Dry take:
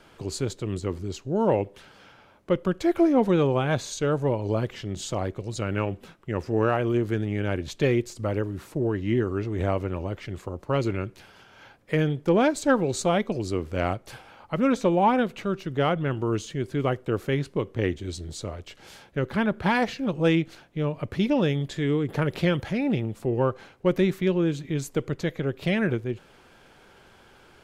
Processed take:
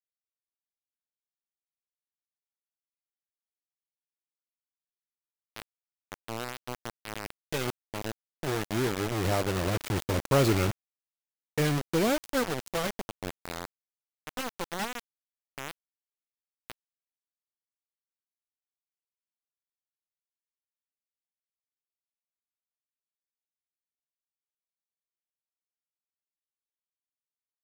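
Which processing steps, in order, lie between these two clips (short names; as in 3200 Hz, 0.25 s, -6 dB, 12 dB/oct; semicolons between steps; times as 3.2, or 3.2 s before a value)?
zero-crossing step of -28 dBFS; Doppler pass-by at 10.34, 13 m/s, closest 9.6 m; bit-crush 5-bit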